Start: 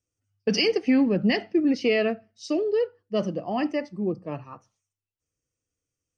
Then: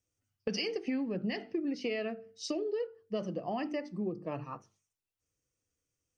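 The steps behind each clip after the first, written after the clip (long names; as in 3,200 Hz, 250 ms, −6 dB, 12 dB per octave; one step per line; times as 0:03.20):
mains-hum notches 50/100/150/200/250/300/350/400/450 Hz
downward compressor, threshold −32 dBFS, peak gain reduction 14.5 dB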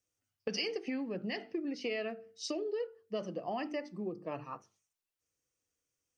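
low-shelf EQ 220 Hz −9.5 dB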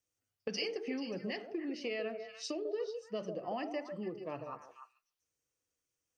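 echo through a band-pass that steps 146 ms, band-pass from 510 Hz, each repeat 1.4 octaves, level −4 dB
level −2 dB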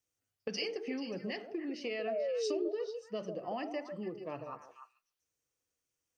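sound drawn into the spectrogram fall, 0:02.07–0:02.69, 330–700 Hz −34 dBFS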